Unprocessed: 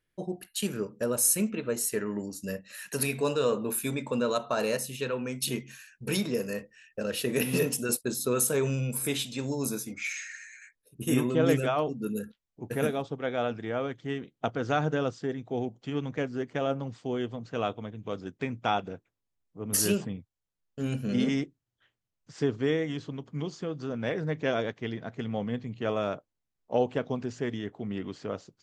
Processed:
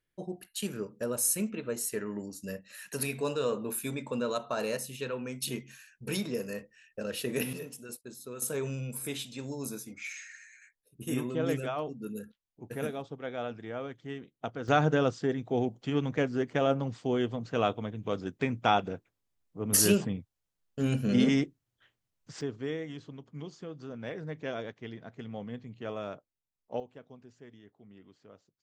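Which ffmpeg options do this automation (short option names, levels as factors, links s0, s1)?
-af "asetnsamples=n=441:p=0,asendcmd='7.53 volume volume -15dB;8.42 volume volume -6.5dB;14.68 volume volume 2.5dB;22.41 volume volume -8dB;26.8 volume volume -20dB',volume=0.631"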